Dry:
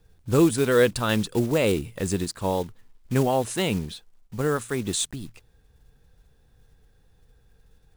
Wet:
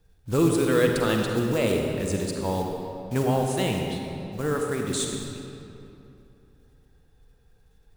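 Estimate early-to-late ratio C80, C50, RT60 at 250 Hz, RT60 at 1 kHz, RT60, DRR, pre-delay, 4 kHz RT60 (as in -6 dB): 2.5 dB, 1.5 dB, 3.1 s, 2.8 s, 2.9 s, 1.0 dB, 40 ms, 1.7 s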